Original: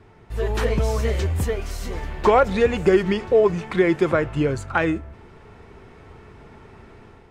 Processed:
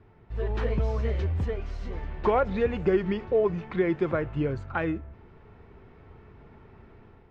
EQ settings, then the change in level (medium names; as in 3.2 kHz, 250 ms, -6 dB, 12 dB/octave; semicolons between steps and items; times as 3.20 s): distance through air 210 m; bass shelf 240 Hz +3.5 dB; -7.5 dB